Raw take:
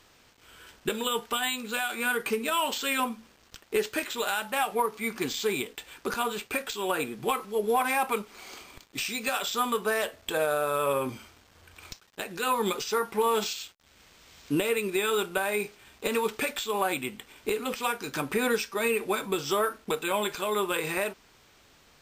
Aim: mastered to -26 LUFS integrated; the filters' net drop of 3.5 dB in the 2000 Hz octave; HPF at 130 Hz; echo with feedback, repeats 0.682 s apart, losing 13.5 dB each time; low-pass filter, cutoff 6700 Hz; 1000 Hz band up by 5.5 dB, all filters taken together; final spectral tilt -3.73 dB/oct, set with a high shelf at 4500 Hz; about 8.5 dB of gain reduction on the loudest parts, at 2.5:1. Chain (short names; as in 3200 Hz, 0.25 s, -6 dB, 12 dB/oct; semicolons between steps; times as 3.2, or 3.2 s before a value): HPF 130 Hz; LPF 6700 Hz; bell 1000 Hz +9 dB; bell 2000 Hz -8 dB; high shelf 4500 Hz -4.5 dB; compressor 2.5:1, threshold -29 dBFS; feedback echo 0.682 s, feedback 21%, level -13.5 dB; gain +6.5 dB